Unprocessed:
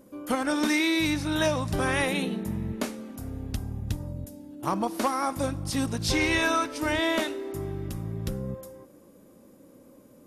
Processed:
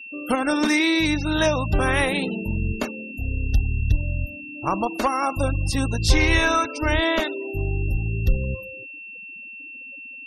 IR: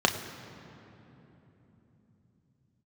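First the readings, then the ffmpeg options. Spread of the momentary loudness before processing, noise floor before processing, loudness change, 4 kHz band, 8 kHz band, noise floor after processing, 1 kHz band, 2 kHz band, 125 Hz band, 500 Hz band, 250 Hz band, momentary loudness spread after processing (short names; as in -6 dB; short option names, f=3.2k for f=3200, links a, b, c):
12 LU, -55 dBFS, +5.0 dB, +4.5 dB, +2.0 dB, -39 dBFS, +4.5 dB, +5.5 dB, +8.0 dB, +4.5 dB, +3.5 dB, 17 LU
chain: -af "aeval=exprs='val(0)+0.00891*sin(2*PI*2700*n/s)':c=same,afftfilt=real='re*gte(hypot(re,im),0.0178)':imag='im*gte(hypot(re,im),0.0178)':win_size=1024:overlap=0.75,asubboost=boost=7:cutoff=66,volume=5dB"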